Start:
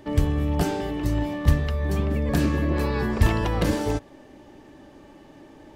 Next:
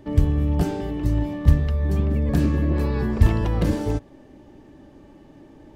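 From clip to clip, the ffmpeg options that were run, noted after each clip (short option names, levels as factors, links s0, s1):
-af "lowshelf=f=420:g=9.5,volume=0.531"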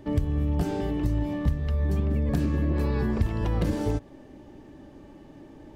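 -af "acompressor=threshold=0.0891:ratio=6"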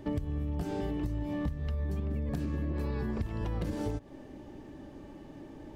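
-af "acompressor=threshold=0.0316:ratio=6"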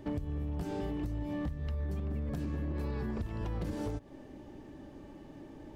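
-af "asoftclip=type=hard:threshold=0.0422,volume=0.794"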